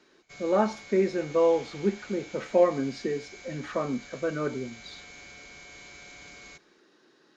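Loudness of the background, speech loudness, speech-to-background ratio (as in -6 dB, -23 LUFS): -46.0 LUFS, -28.0 LUFS, 18.0 dB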